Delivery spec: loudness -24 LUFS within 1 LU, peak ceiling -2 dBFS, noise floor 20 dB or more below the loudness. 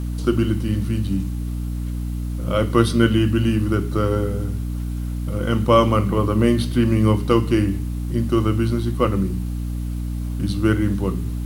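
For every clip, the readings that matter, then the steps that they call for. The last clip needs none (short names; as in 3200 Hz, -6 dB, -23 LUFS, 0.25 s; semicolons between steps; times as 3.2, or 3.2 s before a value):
hum 60 Hz; harmonics up to 300 Hz; hum level -23 dBFS; loudness -21.0 LUFS; peak -2.0 dBFS; loudness target -24.0 LUFS
-> de-hum 60 Hz, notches 5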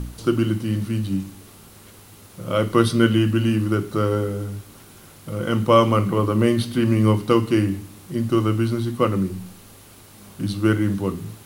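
hum none; loudness -21.0 LUFS; peak -2.5 dBFS; loudness target -24.0 LUFS
-> gain -3 dB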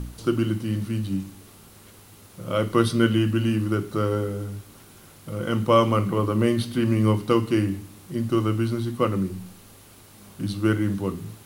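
loudness -24.0 LUFS; peak -5.5 dBFS; noise floor -49 dBFS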